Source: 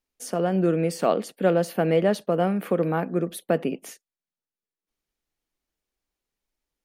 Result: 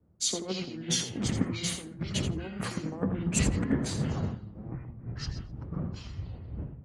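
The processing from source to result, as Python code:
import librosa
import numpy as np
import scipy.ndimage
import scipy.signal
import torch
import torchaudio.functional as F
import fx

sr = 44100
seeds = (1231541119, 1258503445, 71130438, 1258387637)

y = fx.dmg_wind(x, sr, seeds[0], corner_hz=260.0, level_db=-37.0)
y = scipy.signal.sosfilt(scipy.signal.butter(2, 83.0, 'highpass', fs=sr, output='sos'), y)
y = fx.hum_notches(y, sr, base_hz=60, count=6)
y = fx.over_compress(y, sr, threshold_db=-29.0, ratio=-0.5)
y = fx.formant_shift(y, sr, semitones=-6)
y = fx.echo_feedback(y, sr, ms=85, feedback_pct=16, wet_db=-7.5)
y = fx.echo_pitch(y, sr, ms=181, semitones=-7, count=3, db_per_echo=-6.0)
y = fx.band_widen(y, sr, depth_pct=100)
y = y * librosa.db_to_amplitude(-2.5)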